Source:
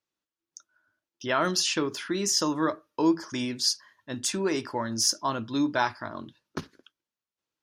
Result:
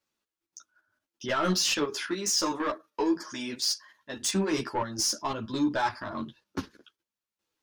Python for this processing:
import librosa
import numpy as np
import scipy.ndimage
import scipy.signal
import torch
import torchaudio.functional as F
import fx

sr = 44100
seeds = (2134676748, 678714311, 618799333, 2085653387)

y = fx.highpass(x, sr, hz=320.0, slope=6, at=(1.74, 4.22))
y = fx.level_steps(y, sr, step_db=10)
y = 10.0 ** (-26.5 / 20.0) * np.tanh(y / 10.0 ** (-26.5 / 20.0))
y = fx.ensemble(y, sr)
y = y * librosa.db_to_amplitude(9.0)